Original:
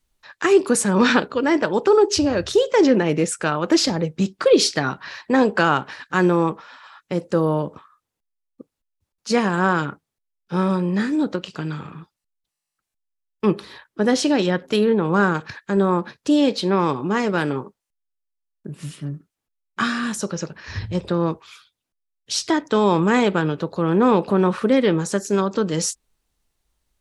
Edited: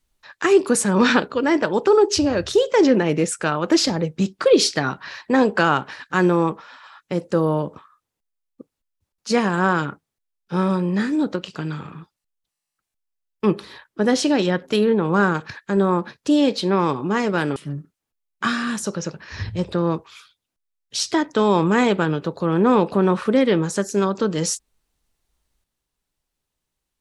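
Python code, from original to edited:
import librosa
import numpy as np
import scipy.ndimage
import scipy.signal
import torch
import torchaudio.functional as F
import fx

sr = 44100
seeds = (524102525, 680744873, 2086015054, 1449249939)

y = fx.edit(x, sr, fx.cut(start_s=17.56, length_s=1.36), tone=tone)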